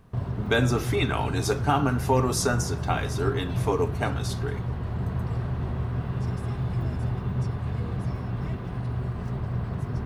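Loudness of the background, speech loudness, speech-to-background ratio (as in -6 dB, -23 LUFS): -30.5 LUFS, -27.0 LUFS, 3.5 dB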